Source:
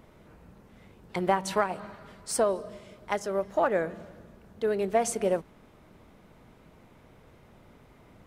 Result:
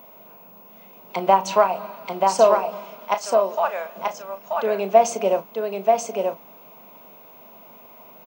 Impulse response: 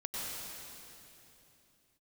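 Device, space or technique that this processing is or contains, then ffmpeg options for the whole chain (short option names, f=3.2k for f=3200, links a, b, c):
old television with a line whistle: -filter_complex "[0:a]asettb=1/sr,asplit=3[a][b][c];[a]atrim=end=3.144[d];[b]atrim=start=3.14:end=3.96,asetpts=PTS-STARTPTS,afade=t=in:d=0.004:c=qsin,afade=t=out:st=0.816:d=0.004:c=qsin,highpass=1k[e];[c]atrim=start=3.956[f];[d][e]acrossfade=d=0.004:c1=hsin:c2=qsin[g];[g][f]acrossfade=d=0.004:c1=qsin:c2=hsin,highpass=f=200:w=0.5412,highpass=f=200:w=1.3066,equalizer=f=320:t=q:w=4:g=-8,equalizer=f=660:t=q:w=4:g=8,equalizer=f=990:t=q:w=4:g=8,equalizer=f=1.8k:t=q:w=4:g=-9,equalizer=f=2.6k:t=q:w=4:g=7,equalizer=f=6.3k:t=q:w=4:g=5,lowpass=f=6.8k:w=0.5412,lowpass=f=6.8k:w=1.3066,asplit=2[h][i];[i]adelay=36,volume=-12dB[j];[h][j]amix=inputs=2:normalize=0,aecho=1:1:933:0.668,aeval=exprs='val(0)+0.00316*sin(2*PI*15625*n/s)':c=same,volume=4dB"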